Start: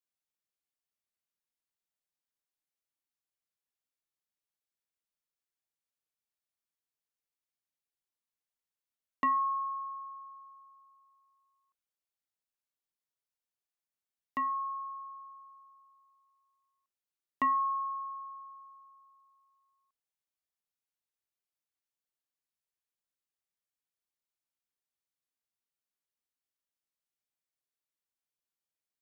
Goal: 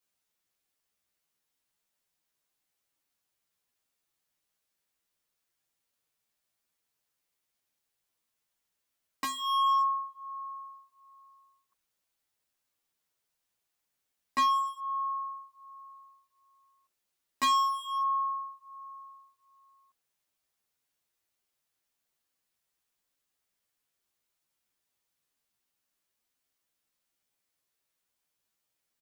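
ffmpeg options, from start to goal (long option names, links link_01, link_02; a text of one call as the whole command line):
ffmpeg -i in.wav -filter_complex "[0:a]aeval=exprs='0.0794*(cos(1*acos(clip(val(0)/0.0794,-1,1)))-cos(1*PI/2))+0.0398*(cos(5*acos(clip(val(0)/0.0794,-1,1)))-cos(5*PI/2))+0.0178*(cos(7*acos(clip(val(0)/0.0794,-1,1)))-cos(7*PI/2))':channel_layout=same,asoftclip=type=hard:threshold=-30dB,asplit=2[link_01][link_02];[link_02]adelay=10.8,afreqshift=-1.3[link_03];[link_01][link_03]amix=inputs=2:normalize=1,volume=7.5dB" out.wav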